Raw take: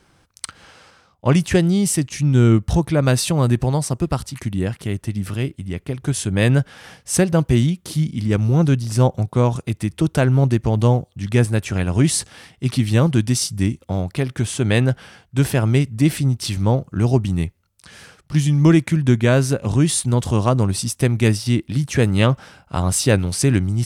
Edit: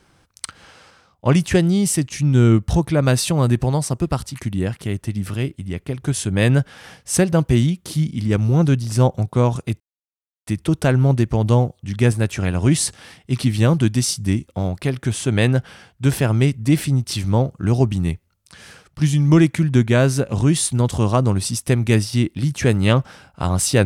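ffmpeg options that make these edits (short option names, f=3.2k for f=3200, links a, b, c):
-filter_complex "[0:a]asplit=2[a][b];[a]atrim=end=9.8,asetpts=PTS-STARTPTS,afade=t=out:st=9.796:d=0.004:c=hsin,apad=pad_dur=0.67[c];[b]atrim=start=9.8,asetpts=PTS-STARTPTS,afade=t=in:d=0.004:c=hsin[d];[c][d]concat=n=2:v=0:a=1"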